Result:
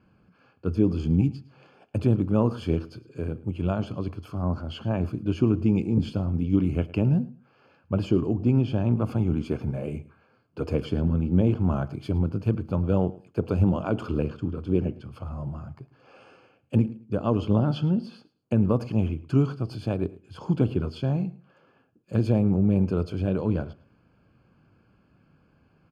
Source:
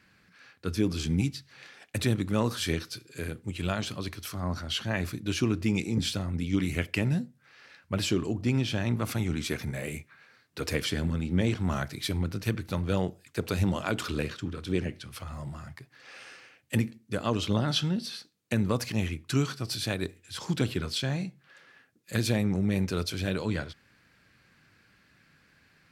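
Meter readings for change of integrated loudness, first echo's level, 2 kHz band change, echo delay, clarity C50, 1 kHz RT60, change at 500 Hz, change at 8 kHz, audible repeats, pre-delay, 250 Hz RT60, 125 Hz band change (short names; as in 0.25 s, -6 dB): +4.5 dB, -20.0 dB, -9.5 dB, 0.108 s, none, none, +4.5 dB, under -15 dB, 2, none, none, +5.5 dB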